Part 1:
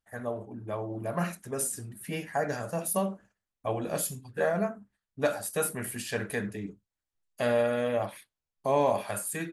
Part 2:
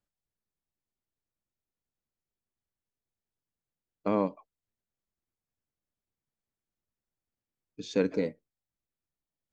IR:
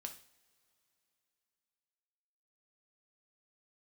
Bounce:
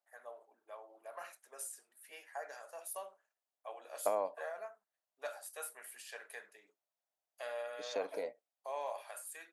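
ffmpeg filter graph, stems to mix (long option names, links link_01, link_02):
-filter_complex "[0:a]highpass=frequency=580:width=0.5412,highpass=frequency=580:width=1.3066,volume=-13dB[link_01];[1:a]acompressor=threshold=-29dB:ratio=6,highpass=frequency=670:width_type=q:width=4.3,volume=-4dB[link_02];[link_01][link_02]amix=inputs=2:normalize=0"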